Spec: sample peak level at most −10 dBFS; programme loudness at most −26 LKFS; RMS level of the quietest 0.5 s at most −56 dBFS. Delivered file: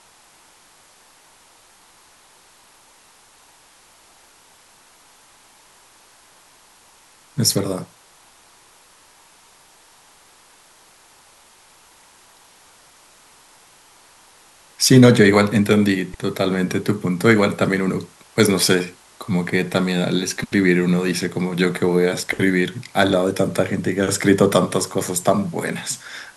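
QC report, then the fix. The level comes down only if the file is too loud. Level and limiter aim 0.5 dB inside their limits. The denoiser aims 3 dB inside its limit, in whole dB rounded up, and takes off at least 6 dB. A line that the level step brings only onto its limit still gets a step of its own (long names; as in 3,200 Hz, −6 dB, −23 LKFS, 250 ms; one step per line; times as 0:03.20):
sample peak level −1.5 dBFS: out of spec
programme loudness −18.5 LKFS: out of spec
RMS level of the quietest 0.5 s −52 dBFS: out of spec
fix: level −8 dB
brickwall limiter −10.5 dBFS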